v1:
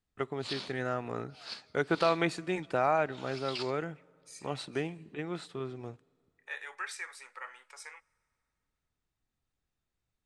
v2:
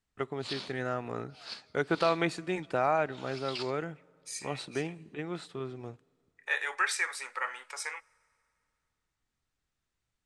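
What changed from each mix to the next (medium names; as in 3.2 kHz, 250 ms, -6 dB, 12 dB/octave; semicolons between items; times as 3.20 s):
second voice +10.0 dB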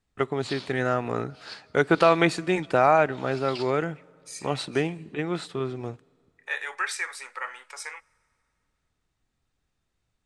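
first voice +8.5 dB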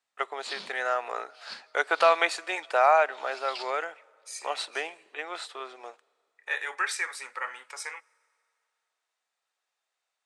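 first voice: add high-pass 590 Hz 24 dB/octave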